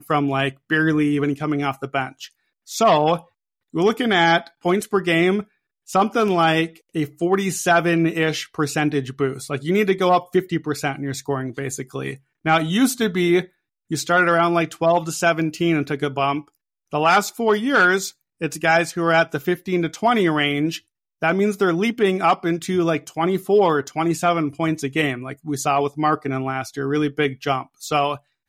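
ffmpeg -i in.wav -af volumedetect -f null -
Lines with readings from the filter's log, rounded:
mean_volume: -20.6 dB
max_volume: -8.0 dB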